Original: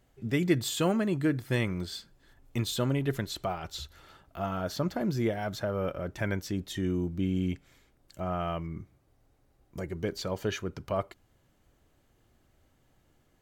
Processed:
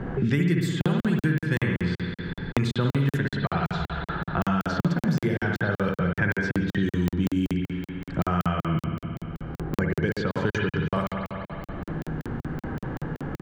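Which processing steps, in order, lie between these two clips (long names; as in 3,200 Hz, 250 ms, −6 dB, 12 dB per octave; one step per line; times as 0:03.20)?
low-pass that shuts in the quiet parts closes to 960 Hz, open at −24 dBFS
in parallel at +1.5 dB: downward compressor, threshold −41 dBFS, peak gain reduction 20 dB
on the sum: thirty-one-band graphic EQ 160 Hz +11 dB, 630 Hz −10 dB, 1,600 Hz +9 dB
on a send: repeating echo 167 ms, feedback 40%, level −22 dB
on the sum: spring reverb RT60 1.2 s, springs 57 ms, chirp 45 ms, DRR 0 dB
regular buffer underruns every 0.19 s, samples 2,048, zero, from 0:00.81
multiband upward and downward compressor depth 100%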